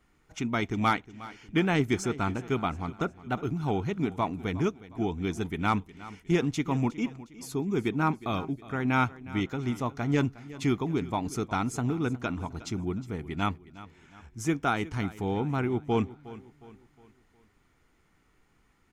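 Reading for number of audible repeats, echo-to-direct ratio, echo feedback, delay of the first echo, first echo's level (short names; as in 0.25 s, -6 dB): 3, -16.5 dB, 43%, 0.361 s, -17.5 dB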